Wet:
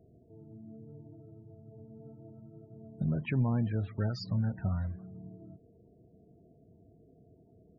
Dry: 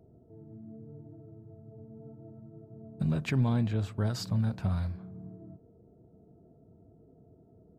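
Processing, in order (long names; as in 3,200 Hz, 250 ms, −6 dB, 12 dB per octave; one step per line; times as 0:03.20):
parametric band 1,900 Hz +2.5 dB 0.37 octaves, from 0:03.70 +9 dB
spectral peaks only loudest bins 32
level −2 dB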